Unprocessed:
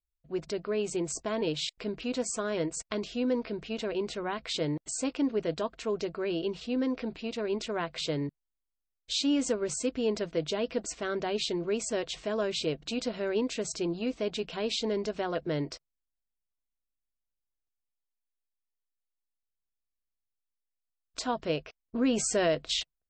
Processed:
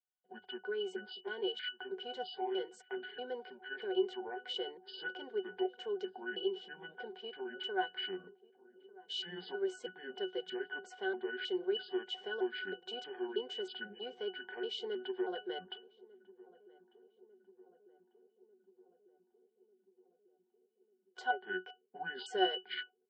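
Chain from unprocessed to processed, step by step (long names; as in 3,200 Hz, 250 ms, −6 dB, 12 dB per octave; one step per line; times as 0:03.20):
pitch shifter gated in a rhythm −8.5 semitones, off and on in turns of 318 ms
high-pass filter 480 Hz 24 dB per octave
dynamic equaliser 800 Hz, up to −6 dB, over −45 dBFS, Q 0.88
resonances in every octave F#, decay 0.15 s
on a send: feedback echo with a low-pass in the loop 1,196 ms, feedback 72%, low-pass 940 Hz, level −21 dB
on the sum: level +15 dB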